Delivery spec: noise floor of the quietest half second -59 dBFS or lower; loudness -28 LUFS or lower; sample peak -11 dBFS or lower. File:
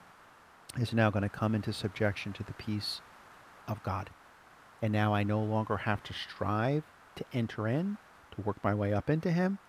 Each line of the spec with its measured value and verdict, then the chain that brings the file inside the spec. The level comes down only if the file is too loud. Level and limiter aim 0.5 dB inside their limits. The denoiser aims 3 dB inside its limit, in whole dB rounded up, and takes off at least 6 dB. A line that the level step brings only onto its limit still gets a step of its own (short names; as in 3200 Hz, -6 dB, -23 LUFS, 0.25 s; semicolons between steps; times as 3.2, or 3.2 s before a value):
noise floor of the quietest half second -58 dBFS: fail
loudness -33.0 LUFS: OK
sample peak -11.5 dBFS: OK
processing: denoiser 6 dB, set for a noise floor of -58 dBFS